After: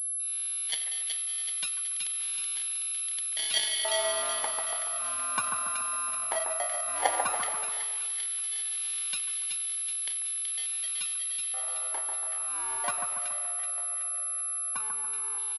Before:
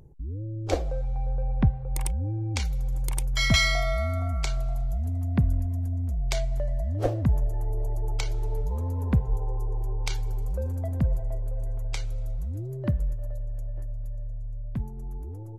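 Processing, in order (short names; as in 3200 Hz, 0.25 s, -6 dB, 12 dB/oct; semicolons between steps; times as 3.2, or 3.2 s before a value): notch 790 Hz; sample-and-hold 34×; 11.88–12.33 notch comb 250 Hz; outdoor echo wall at 16 m, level -18 dB; LFO high-pass square 0.13 Hz 860–3400 Hz; on a send: split-band echo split 1800 Hz, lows 0.142 s, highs 0.376 s, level -4.5 dB; on the sum: pulse-width modulation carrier 11000 Hz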